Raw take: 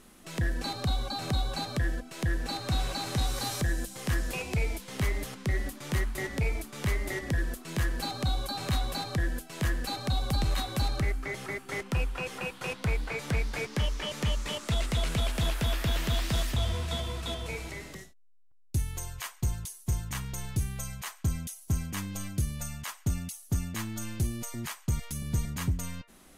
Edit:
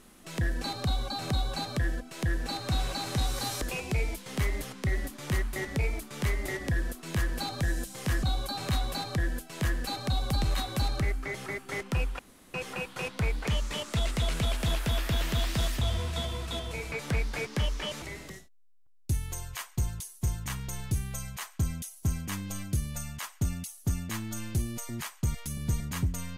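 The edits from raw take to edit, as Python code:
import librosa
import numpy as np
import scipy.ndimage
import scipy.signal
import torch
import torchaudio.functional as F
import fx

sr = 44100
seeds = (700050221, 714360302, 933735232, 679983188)

y = fx.edit(x, sr, fx.move(start_s=3.62, length_s=0.62, to_s=8.23),
    fx.insert_room_tone(at_s=12.19, length_s=0.35),
    fx.move(start_s=13.12, length_s=1.1, to_s=17.67), tone=tone)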